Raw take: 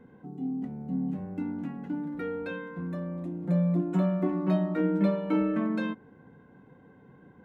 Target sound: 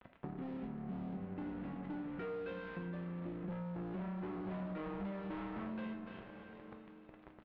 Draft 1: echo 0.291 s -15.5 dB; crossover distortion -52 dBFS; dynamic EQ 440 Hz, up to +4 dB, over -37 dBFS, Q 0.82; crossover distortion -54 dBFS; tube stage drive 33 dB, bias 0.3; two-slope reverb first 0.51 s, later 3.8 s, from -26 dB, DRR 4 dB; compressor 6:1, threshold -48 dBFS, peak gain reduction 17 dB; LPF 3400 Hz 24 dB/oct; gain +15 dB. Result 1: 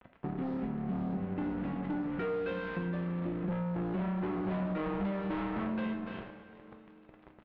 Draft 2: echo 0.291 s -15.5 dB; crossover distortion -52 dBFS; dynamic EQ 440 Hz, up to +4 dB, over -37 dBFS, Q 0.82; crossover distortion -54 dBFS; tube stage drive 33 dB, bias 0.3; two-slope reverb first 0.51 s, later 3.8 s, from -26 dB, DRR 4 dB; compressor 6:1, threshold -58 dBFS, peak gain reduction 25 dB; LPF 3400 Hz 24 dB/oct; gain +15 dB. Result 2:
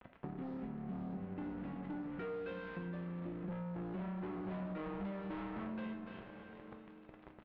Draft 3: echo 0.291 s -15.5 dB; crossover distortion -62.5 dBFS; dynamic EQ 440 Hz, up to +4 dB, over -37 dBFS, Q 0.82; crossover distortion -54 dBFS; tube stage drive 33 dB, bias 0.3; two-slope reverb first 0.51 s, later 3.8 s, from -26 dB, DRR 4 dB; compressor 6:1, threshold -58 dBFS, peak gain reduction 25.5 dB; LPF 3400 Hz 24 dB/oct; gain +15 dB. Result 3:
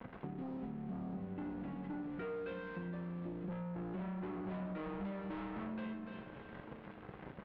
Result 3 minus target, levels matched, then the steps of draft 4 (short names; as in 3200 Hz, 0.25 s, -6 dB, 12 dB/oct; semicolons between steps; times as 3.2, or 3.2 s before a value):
second crossover distortion: distortion -6 dB
echo 0.291 s -15.5 dB; crossover distortion -62.5 dBFS; dynamic EQ 440 Hz, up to +4 dB, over -37 dBFS, Q 0.82; crossover distortion -48 dBFS; tube stage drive 33 dB, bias 0.3; two-slope reverb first 0.51 s, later 3.8 s, from -26 dB, DRR 4 dB; compressor 6:1, threshold -58 dBFS, peak gain reduction 25 dB; LPF 3400 Hz 24 dB/oct; gain +15 dB